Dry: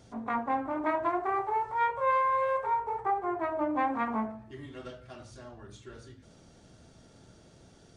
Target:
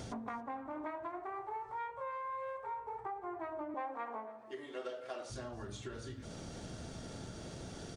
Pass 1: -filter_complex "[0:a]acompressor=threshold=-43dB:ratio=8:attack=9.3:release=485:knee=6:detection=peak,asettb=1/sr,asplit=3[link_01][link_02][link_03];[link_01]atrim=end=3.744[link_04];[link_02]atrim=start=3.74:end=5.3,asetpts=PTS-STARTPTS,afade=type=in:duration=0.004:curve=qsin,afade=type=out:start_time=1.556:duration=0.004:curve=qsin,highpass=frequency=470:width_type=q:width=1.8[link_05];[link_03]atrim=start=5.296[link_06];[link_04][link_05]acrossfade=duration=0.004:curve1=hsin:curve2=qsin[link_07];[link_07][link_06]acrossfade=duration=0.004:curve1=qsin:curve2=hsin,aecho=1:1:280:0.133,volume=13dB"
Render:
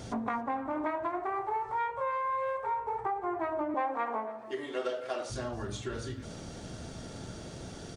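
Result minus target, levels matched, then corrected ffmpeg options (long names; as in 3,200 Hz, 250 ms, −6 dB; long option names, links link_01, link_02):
downward compressor: peak gain reduction −9 dB
-filter_complex "[0:a]acompressor=threshold=-53.5dB:ratio=8:attack=9.3:release=485:knee=6:detection=peak,asettb=1/sr,asplit=3[link_01][link_02][link_03];[link_01]atrim=end=3.744[link_04];[link_02]atrim=start=3.74:end=5.3,asetpts=PTS-STARTPTS,afade=type=in:duration=0.004:curve=qsin,afade=type=out:start_time=1.556:duration=0.004:curve=qsin,highpass=frequency=470:width_type=q:width=1.8[link_05];[link_03]atrim=start=5.296[link_06];[link_04][link_05]acrossfade=duration=0.004:curve1=hsin:curve2=qsin[link_07];[link_07][link_06]acrossfade=duration=0.004:curve1=qsin:curve2=hsin,aecho=1:1:280:0.133,volume=13dB"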